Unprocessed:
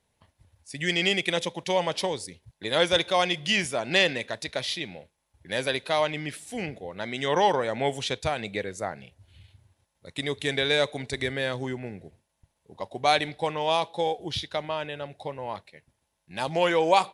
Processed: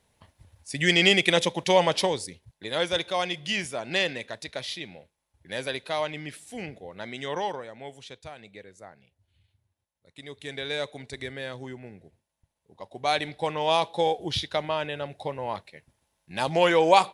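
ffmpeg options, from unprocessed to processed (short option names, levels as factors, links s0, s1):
-af "volume=12.6,afade=t=out:st=1.83:d=0.84:silence=0.354813,afade=t=out:st=7.08:d=0.65:silence=0.298538,afade=t=in:st=10.14:d=0.63:silence=0.421697,afade=t=in:st=12.81:d=1.11:silence=0.334965"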